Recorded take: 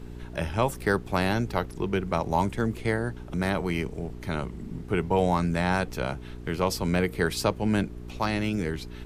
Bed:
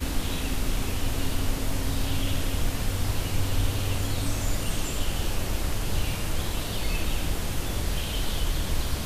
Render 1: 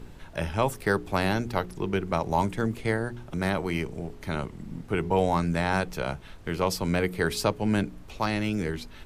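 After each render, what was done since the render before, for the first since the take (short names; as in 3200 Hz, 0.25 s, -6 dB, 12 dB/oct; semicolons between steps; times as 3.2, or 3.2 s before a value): de-hum 60 Hz, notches 7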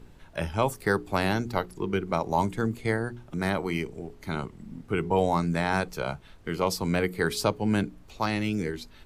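noise print and reduce 6 dB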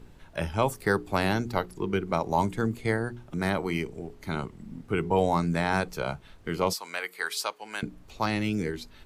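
6.73–7.83 HPF 1000 Hz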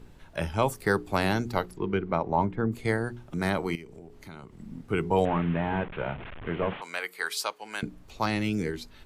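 1.75–2.71 LPF 3700 Hz -> 1400 Hz; 3.75–4.59 compressor 3:1, threshold -44 dBFS; 5.25–6.82 delta modulation 16 kbps, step -34 dBFS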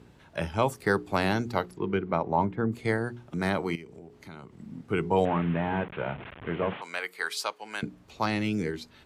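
HPF 85 Hz; high shelf 11000 Hz -9.5 dB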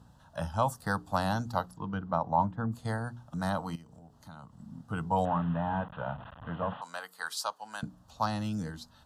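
fixed phaser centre 930 Hz, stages 4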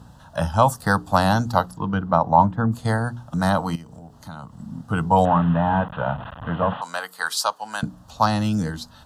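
gain +11.5 dB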